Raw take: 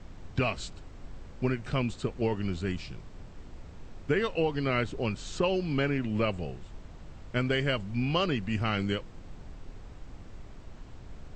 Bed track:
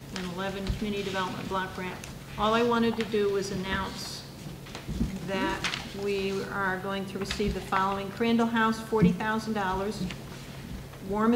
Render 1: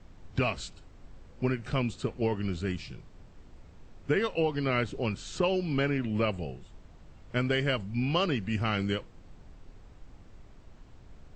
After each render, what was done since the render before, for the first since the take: noise print and reduce 6 dB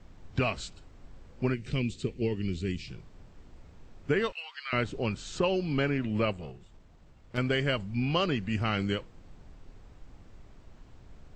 1.54–2.88 s: high-order bell 960 Hz -13 dB; 4.32–4.73 s: high-pass 1.3 kHz 24 dB/octave; 6.33–7.38 s: valve stage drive 29 dB, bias 0.75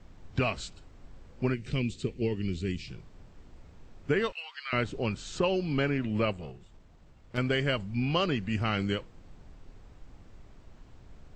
no audible change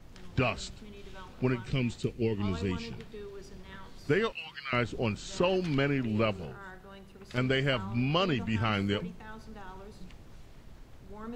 add bed track -18 dB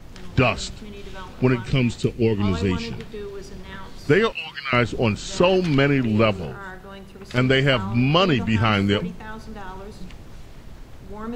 trim +10 dB

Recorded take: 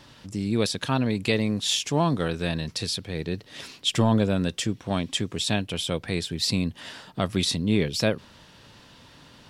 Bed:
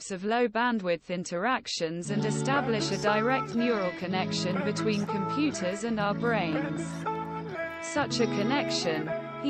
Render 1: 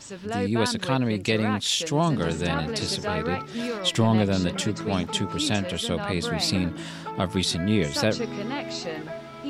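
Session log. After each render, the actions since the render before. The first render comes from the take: add bed -3.5 dB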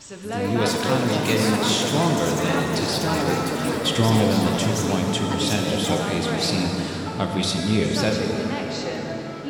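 ever faster or slower copies 219 ms, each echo +6 st, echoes 3, each echo -6 dB; plate-style reverb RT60 4.6 s, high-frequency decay 0.55×, DRR 1 dB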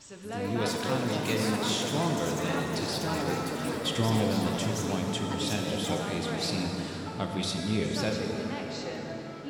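trim -8 dB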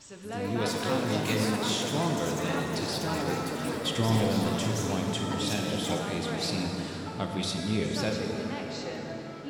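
0.74–1.45 s: doubling 19 ms -6 dB; 4.04–5.99 s: flutter echo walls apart 9.1 m, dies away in 0.38 s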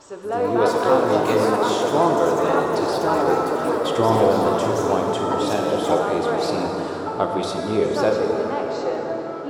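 high-order bell 670 Hz +14 dB 2.5 oct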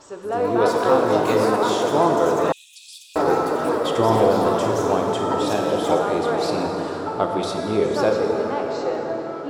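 2.52–3.16 s: rippled Chebyshev high-pass 2.4 kHz, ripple 9 dB

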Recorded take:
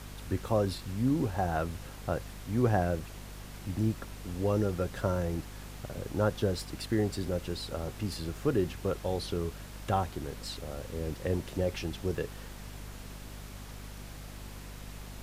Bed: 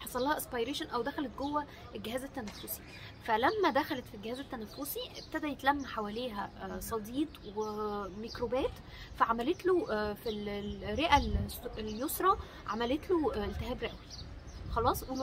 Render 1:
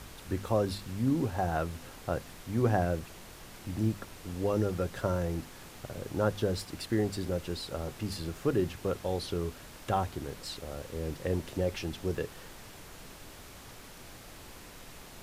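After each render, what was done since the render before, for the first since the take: de-hum 50 Hz, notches 5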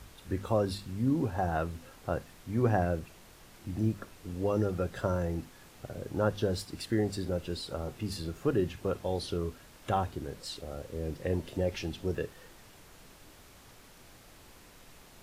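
noise print and reduce 6 dB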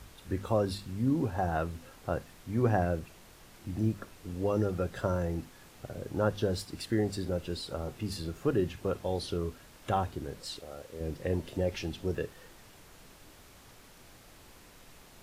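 10.59–11.01 s: bass shelf 300 Hz -11 dB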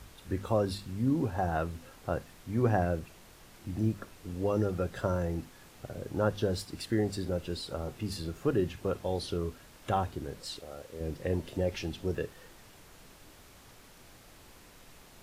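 no audible change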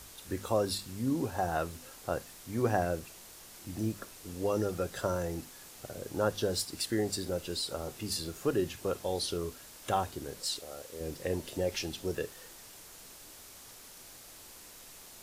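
tone controls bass -6 dB, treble +10 dB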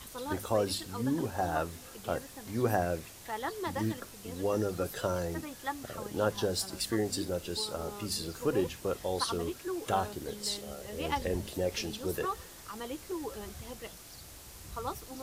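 add bed -7.5 dB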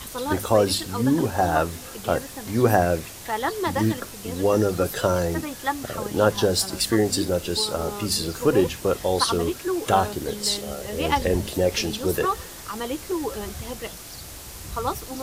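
trim +10.5 dB

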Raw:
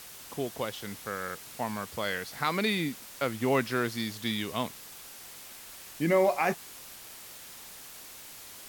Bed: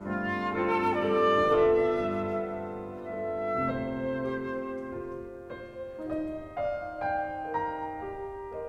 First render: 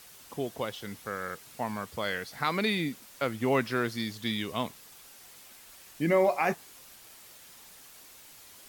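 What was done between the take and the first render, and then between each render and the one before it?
noise reduction 6 dB, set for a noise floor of -47 dBFS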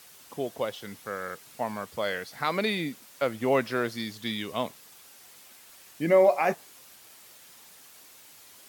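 high-pass 120 Hz 6 dB/octave; dynamic bell 580 Hz, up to +6 dB, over -42 dBFS, Q 2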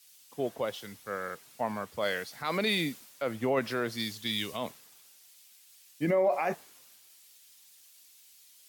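peak limiter -20.5 dBFS, peak gain reduction 11 dB; three bands expanded up and down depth 70%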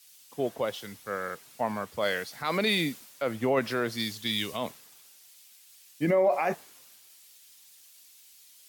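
trim +2.5 dB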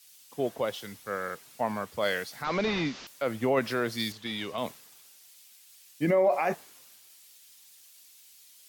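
2.44–3.07 s: one-bit delta coder 32 kbps, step -37.5 dBFS; 4.12–4.58 s: overdrive pedal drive 12 dB, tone 1 kHz, clips at -17.5 dBFS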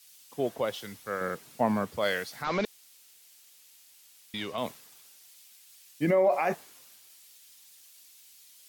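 1.21–1.97 s: peaking EQ 200 Hz +8 dB 2.8 oct; 2.65–4.34 s: room tone

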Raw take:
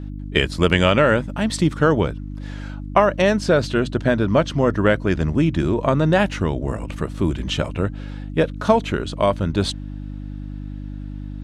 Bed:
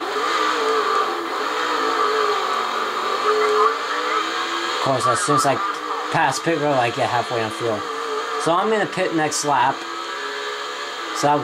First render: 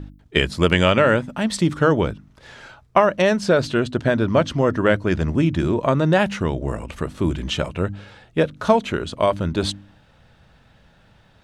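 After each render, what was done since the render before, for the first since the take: de-hum 50 Hz, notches 6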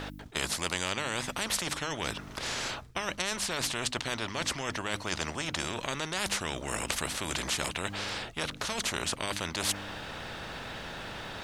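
reverse; compression, threshold -24 dBFS, peak gain reduction 14 dB; reverse; spectrum-flattening compressor 4:1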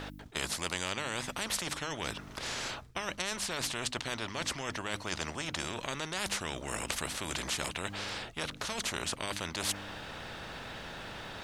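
trim -3 dB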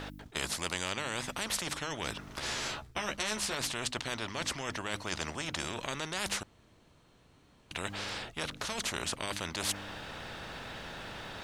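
2.35–3.55 s: doubling 14 ms -4 dB; 6.43–7.71 s: room tone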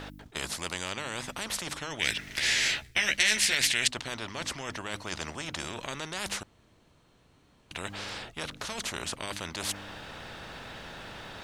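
1.99–3.88 s: resonant high shelf 1.5 kHz +8.5 dB, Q 3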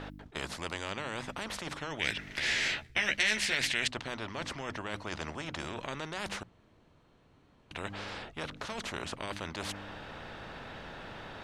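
low-pass 2.2 kHz 6 dB/octave; hum notches 60/120/180 Hz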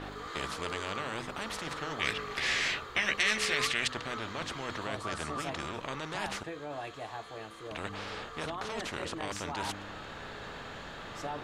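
add bed -21.5 dB

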